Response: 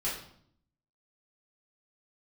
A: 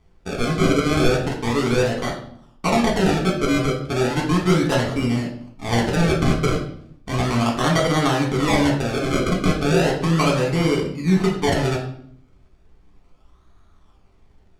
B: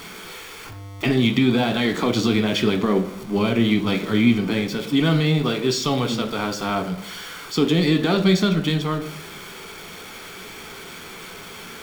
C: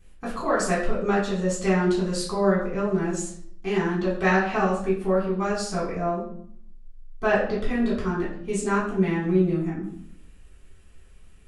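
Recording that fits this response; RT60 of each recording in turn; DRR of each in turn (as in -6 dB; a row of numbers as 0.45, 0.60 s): C; 0.60, 0.60, 0.60 s; -2.0, 6.0, -9.0 dB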